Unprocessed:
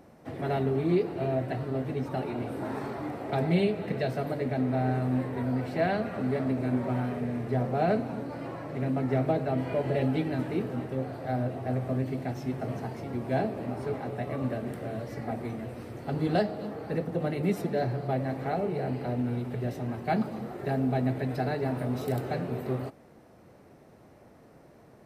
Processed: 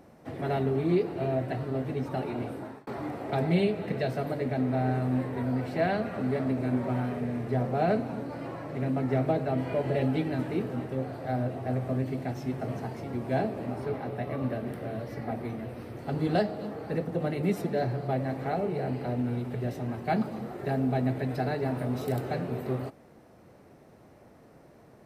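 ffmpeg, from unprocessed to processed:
-filter_complex "[0:a]asettb=1/sr,asplit=3[s0][s1][s2];[s0]atrim=end=13.804[s3];[s1]atrim=start=13.8:end=15.99,asetpts=PTS-STARTPTS,afade=t=in:d=0.004:c=qsin,afade=t=out:st=2.186:d=0.004:c=qsin,equalizer=f=7400:t=o:w=0.62:g=-7[s4];[s2]atrim=start=15.986[s5];[s3][s4]acrossfade=d=0.004:c1=hsin:c2=qsin[s6];[s6][s5]acrossfade=d=0.004:c1=qsin:c2=hsin,asplit=2[s7][s8];[s7]atrim=end=2.87,asetpts=PTS-STARTPTS,afade=t=out:st=2.44:d=0.43[s9];[s8]atrim=start=2.87,asetpts=PTS-STARTPTS,afade=t=in:d=0.004:c=hsin[s10];[s9][s10]concat=n=2:v=0:a=1"

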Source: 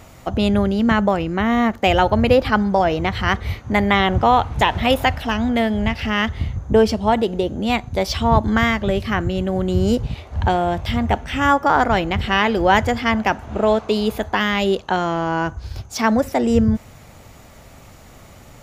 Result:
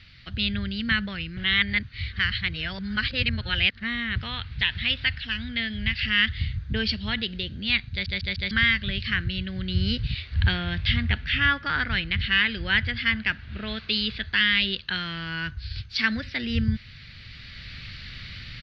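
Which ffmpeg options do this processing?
-filter_complex "[0:a]asettb=1/sr,asplit=3[s0][s1][s2];[s0]atrim=end=10.344[s3];[s1]atrim=start=10.34:end=13.77,asetpts=PTS-STARTPTS,afade=t=in:d=0.004:c=qsin,afade=t=out:st=3.426:d=0.004:c=qsin,highshelf=f=3800:g=-7.5[s4];[s2]atrim=start=13.766[s5];[s3][s4]acrossfade=d=0.004:c1=hsin:c2=qsin[s6];[s6][s5]acrossfade=d=0.004:c1=qsin:c2=hsin,asplit=7[s7][s8][s9][s10][s11][s12][s13];[s7]atrim=end=1.372[s14];[s8]atrim=start=1.368:end=4.162,asetpts=PTS-STARTPTS,areverse[s15];[s9]atrim=start=4.158:end=8.062[s16];[s10]atrim=start=7.908:end=8.062[s17];[s11]atrim=start=7.908:end=8.062[s18];[s12]atrim=start=7.908:end=8.062[s19];[s13]atrim=start=8.508[s20];[s14][s15]acrossfade=d=0.004:c1=hsin:c2=hsin[s21];[s21][s16]acrossfade=d=0.004:c1=hsin:c2=hsin[s22];[s22][s17]acrossfade=d=0.004:c1=hsin:c2=hsin[s23];[s23][s18]acrossfade=d=0.004:c1=hsin:c2=hsin[s24];[s24][s19]acrossfade=d=0.004:c1=hsin:c2=hsin[s25];[s25][s20]acrossfade=d=0.004:c1=hsin:c2=hsin,acrossover=split=5800[s26][s27];[s27]acompressor=threshold=0.00126:ratio=4:attack=1:release=60[s28];[s26][s28]amix=inputs=2:normalize=0,firequalizer=gain_entry='entry(120,0);entry(310,-14);entry(790,-25);entry(1600,5);entry(4500,13);entry(6900,-25)':delay=0.05:min_phase=1,dynaudnorm=f=480:g=3:m=3.76,volume=0.447"

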